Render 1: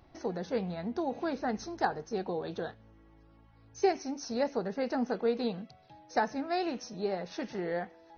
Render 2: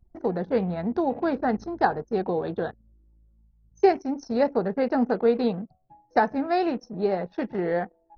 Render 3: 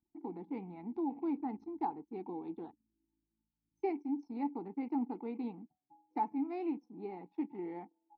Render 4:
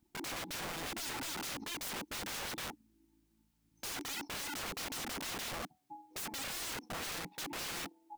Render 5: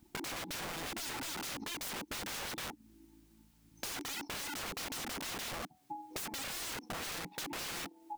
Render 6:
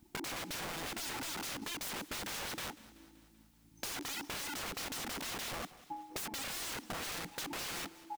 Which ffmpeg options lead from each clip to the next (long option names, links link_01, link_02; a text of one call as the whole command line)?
ffmpeg -i in.wav -af "highshelf=frequency=3300:gain=-10.5,anlmdn=0.0251,volume=8.5dB" out.wav
ffmpeg -i in.wav -filter_complex "[0:a]asplit=3[link_01][link_02][link_03];[link_01]bandpass=frequency=300:width_type=q:width=8,volume=0dB[link_04];[link_02]bandpass=frequency=870:width_type=q:width=8,volume=-6dB[link_05];[link_03]bandpass=frequency=2240:width_type=q:width=8,volume=-9dB[link_06];[link_04][link_05][link_06]amix=inputs=3:normalize=0,volume=-2.5dB" out.wav
ffmpeg -i in.wav -af "alimiter=level_in=8.5dB:limit=-24dB:level=0:latency=1:release=35,volume=-8.5dB,aeval=exprs='(mod(299*val(0)+1,2)-1)/299':channel_layout=same,volume=13.5dB" out.wav
ffmpeg -i in.wav -af "acompressor=threshold=-49dB:ratio=10,volume=10dB" out.wav
ffmpeg -i in.wav -af "aecho=1:1:191|382|573|764|955:0.112|0.064|0.0365|0.0208|0.0118" out.wav